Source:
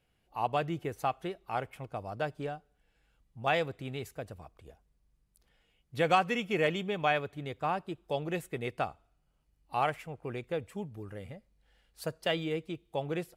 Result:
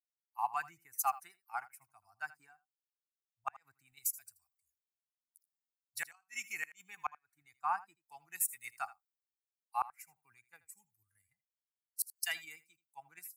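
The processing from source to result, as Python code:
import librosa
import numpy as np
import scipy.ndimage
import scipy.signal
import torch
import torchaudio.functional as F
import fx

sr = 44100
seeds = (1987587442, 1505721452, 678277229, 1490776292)

p1 = fx.bin_expand(x, sr, power=1.5)
p2 = np.diff(p1, prepend=0.0)
p3 = fx.level_steps(p2, sr, step_db=19)
p4 = p2 + (p3 * 10.0 ** (0.0 / 20.0))
p5 = fx.low_shelf_res(p4, sr, hz=570.0, db=-8.5, q=3.0)
p6 = fx.fixed_phaser(p5, sr, hz=1400.0, stages=4)
p7 = fx.gate_flip(p6, sr, shuts_db=-36.0, range_db=-37)
p8 = p7 + fx.echo_single(p7, sr, ms=81, db=-17.0, dry=0)
p9 = fx.band_widen(p8, sr, depth_pct=70)
y = p9 * 10.0 ** (10.5 / 20.0)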